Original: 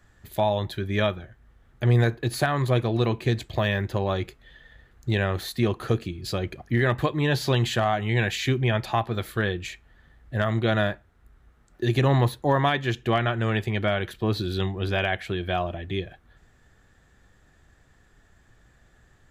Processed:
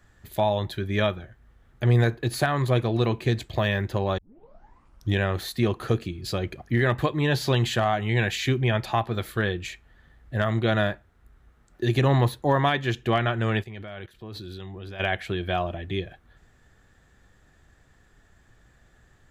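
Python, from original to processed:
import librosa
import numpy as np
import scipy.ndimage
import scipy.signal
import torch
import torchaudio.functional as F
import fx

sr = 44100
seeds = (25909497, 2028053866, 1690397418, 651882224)

y = fx.level_steps(x, sr, step_db=19, at=(13.62, 14.99), fade=0.02)
y = fx.edit(y, sr, fx.tape_start(start_s=4.18, length_s=1.02), tone=tone)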